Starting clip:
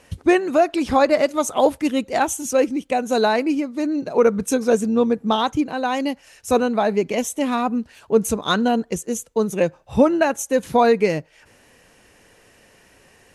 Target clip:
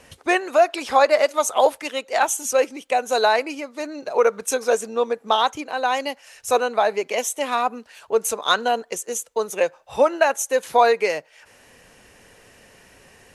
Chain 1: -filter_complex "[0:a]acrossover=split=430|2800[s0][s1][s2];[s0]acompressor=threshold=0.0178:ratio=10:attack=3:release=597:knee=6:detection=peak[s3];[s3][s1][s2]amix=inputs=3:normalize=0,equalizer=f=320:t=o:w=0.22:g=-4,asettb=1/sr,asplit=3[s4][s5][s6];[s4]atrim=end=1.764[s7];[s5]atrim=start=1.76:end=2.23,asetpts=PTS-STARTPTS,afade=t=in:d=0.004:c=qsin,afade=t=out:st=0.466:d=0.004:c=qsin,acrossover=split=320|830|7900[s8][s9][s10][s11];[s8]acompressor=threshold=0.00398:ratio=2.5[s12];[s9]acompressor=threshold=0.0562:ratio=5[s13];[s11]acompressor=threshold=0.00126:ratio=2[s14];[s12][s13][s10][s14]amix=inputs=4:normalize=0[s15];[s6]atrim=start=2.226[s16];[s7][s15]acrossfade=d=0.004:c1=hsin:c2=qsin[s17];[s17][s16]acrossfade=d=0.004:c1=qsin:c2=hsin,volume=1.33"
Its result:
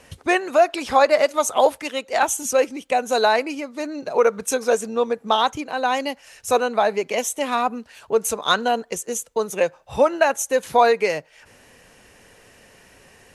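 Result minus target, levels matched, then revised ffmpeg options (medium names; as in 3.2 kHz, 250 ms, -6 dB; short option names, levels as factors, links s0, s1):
compression: peak gain reduction -10.5 dB
-filter_complex "[0:a]acrossover=split=430|2800[s0][s1][s2];[s0]acompressor=threshold=0.00473:ratio=10:attack=3:release=597:knee=6:detection=peak[s3];[s3][s1][s2]amix=inputs=3:normalize=0,equalizer=f=320:t=o:w=0.22:g=-4,asettb=1/sr,asplit=3[s4][s5][s6];[s4]atrim=end=1.764[s7];[s5]atrim=start=1.76:end=2.23,asetpts=PTS-STARTPTS,afade=t=in:d=0.004:c=qsin,afade=t=out:st=0.466:d=0.004:c=qsin,acrossover=split=320|830|7900[s8][s9][s10][s11];[s8]acompressor=threshold=0.00398:ratio=2.5[s12];[s9]acompressor=threshold=0.0562:ratio=5[s13];[s11]acompressor=threshold=0.00126:ratio=2[s14];[s12][s13][s10][s14]amix=inputs=4:normalize=0[s15];[s6]atrim=start=2.226[s16];[s7][s15]acrossfade=d=0.004:c1=hsin:c2=qsin[s17];[s17][s16]acrossfade=d=0.004:c1=qsin:c2=hsin,volume=1.33"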